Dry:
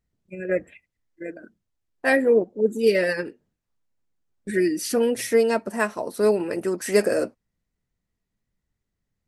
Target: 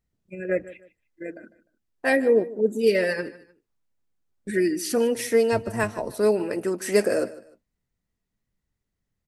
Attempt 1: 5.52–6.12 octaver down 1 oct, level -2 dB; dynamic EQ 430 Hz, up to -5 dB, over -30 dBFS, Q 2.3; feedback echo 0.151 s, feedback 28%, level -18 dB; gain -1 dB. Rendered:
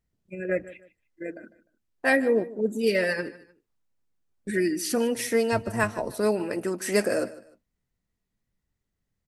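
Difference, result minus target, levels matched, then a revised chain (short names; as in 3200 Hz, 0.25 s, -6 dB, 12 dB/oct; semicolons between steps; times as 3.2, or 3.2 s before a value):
1000 Hz band +3.0 dB
5.52–6.12 octaver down 1 oct, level -2 dB; dynamic EQ 1300 Hz, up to -5 dB, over -30 dBFS, Q 2.3; feedback echo 0.151 s, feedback 28%, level -18 dB; gain -1 dB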